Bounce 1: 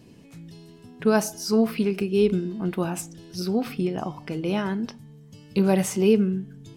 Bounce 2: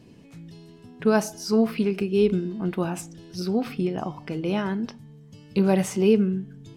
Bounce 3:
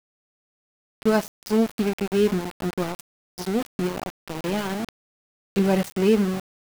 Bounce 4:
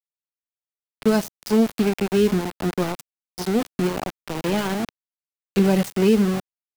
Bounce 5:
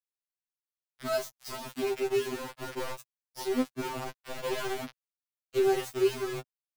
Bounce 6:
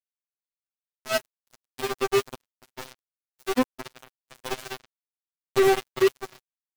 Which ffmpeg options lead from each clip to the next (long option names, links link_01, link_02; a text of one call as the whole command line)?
ffmpeg -i in.wav -af "highshelf=frequency=7700:gain=-7.5" out.wav
ffmpeg -i in.wav -af "aeval=exprs='val(0)*gte(abs(val(0)),0.0501)':channel_layout=same" out.wav
ffmpeg -i in.wav -filter_complex "[0:a]acrossover=split=330|3000[link_01][link_02][link_03];[link_02]acompressor=threshold=-24dB:ratio=6[link_04];[link_01][link_04][link_03]amix=inputs=3:normalize=0,volume=3.5dB" out.wav
ffmpeg -i in.wav -filter_complex "[0:a]acrossover=split=170|500|4300[link_01][link_02][link_03][link_04];[link_02]aeval=exprs='sgn(val(0))*max(abs(val(0))-0.0119,0)':channel_layout=same[link_05];[link_01][link_05][link_03][link_04]amix=inputs=4:normalize=0,afftfilt=real='re*2.45*eq(mod(b,6),0)':imag='im*2.45*eq(mod(b,6),0)':win_size=2048:overlap=0.75,volume=-5dB" out.wav
ffmpeg -i in.wav -filter_complex "[0:a]aeval=exprs='val(0)+0.5*0.0141*sgn(val(0))':channel_layout=same,asplit=2[link_01][link_02];[link_02]adelay=832,lowpass=frequency=900:poles=1,volume=-15dB,asplit=2[link_03][link_04];[link_04]adelay=832,lowpass=frequency=900:poles=1,volume=0.36,asplit=2[link_05][link_06];[link_06]adelay=832,lowpass=frequency=900:poles=1,volume=0.36[link_07];[link_01][link_03][link_05][link_07]amix=inputs=4:normalize=0,acrusher=bits=3:mix=0:aa=0.5,volume=4dB" out.wav